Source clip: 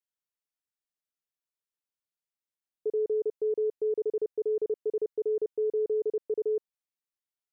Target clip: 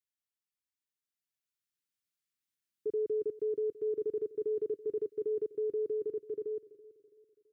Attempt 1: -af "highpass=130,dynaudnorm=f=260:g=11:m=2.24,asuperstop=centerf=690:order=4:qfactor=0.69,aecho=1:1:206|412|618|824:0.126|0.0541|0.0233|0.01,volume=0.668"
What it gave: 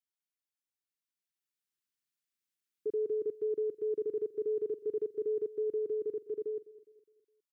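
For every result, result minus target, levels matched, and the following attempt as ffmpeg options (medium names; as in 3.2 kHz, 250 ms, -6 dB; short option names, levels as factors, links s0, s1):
echo 125 ms early; 125 Hz band -3.0 dB
-af "highpass=130,dynaudnorm=f=260:g=11:m=2.24,asuperstop=centerf=690:order=4:qfactor=0.69,aecho=1:1:331|662|993|1324:0.126|0.0541|0.0233|0.01,volume=0.668"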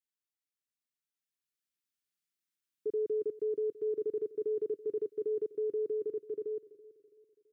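125 Hz band -2.5 dB
-af "highpass=62,dynaudnorm=f=260:g=11:m=2.24,asuperstop=centerf=690:order=4:qfactor=0.69,aecho=1:1:331|662|993|1324:0.126|0.0541|0.0233|0.01,volume=0.668"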